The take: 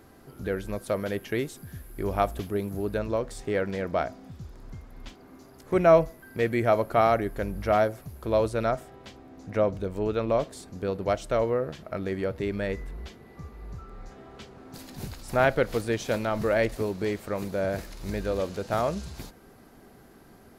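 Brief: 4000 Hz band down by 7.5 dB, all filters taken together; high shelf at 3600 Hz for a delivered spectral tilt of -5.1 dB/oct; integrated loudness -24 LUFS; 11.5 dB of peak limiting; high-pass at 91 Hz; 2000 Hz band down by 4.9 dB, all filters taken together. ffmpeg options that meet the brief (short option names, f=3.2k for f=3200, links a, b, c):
-af "highpass=91,equalizer=f=2k:t=o:g=-4.5,highshelf=f=3.6k:g=-4,equalizer=f=4k:t=o:g=-5.5,volume=8dB,alimiter=limit=-12dB:level=0:latency=1"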